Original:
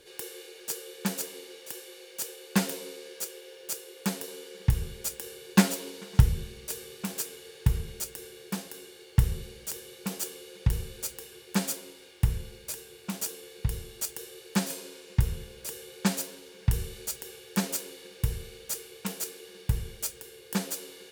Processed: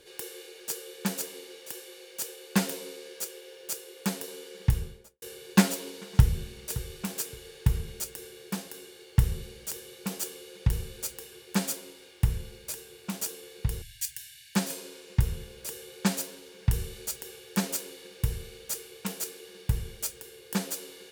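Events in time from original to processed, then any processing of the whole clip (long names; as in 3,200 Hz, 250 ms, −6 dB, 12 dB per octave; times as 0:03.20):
0:04.70–0:05.22: fade out and dull
0:05.76–0:06.50: delay throw 570 ms, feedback 20%, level −16 dB
0:13.82–0:14.55: linear-phase brick-wall band-stop 150–1,500 Hz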